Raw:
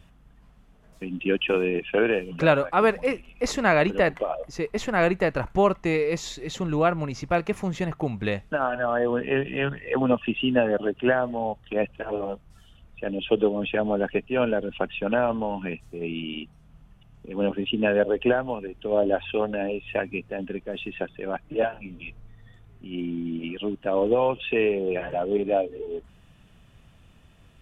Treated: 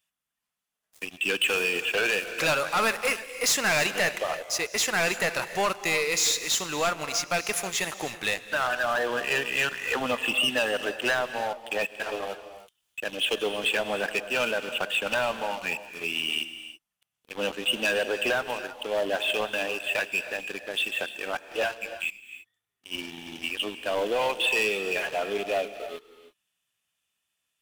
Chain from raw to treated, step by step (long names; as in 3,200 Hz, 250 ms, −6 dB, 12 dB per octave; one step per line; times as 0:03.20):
first difference
leveller curve on the samples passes 5
reverb whose tail is shaped and stops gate 350 ms rising, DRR 11 dB
level +1 dB